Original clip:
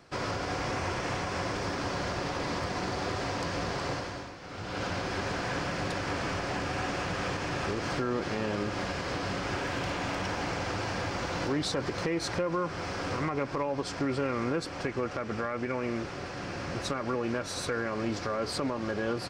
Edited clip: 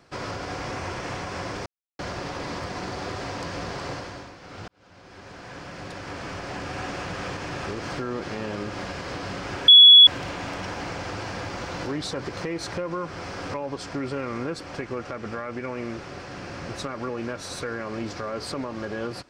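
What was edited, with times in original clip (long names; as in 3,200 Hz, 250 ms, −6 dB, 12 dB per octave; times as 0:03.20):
0:01.66–0:01.99: silence
0:04.68–0:06.83: fade in
0:09.68: insert tone 3,380 Hz −6.5 dBFS 0.39 s
0:13.15–0:13.60: remove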